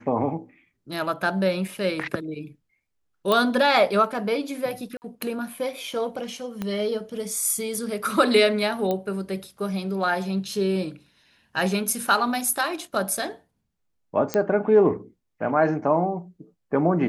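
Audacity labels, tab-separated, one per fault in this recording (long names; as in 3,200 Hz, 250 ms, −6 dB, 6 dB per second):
1.680000	1.680000	drop-out 3 ms
3.320000	3.320000	click −9 dBFS
4.970000	5.020000	drop-out 49 ms
6.620000	6.620000	click −16 dBFS
8.910000	8.910000	click −14 dBFS
14.340000	14.340000	click −9 dBFS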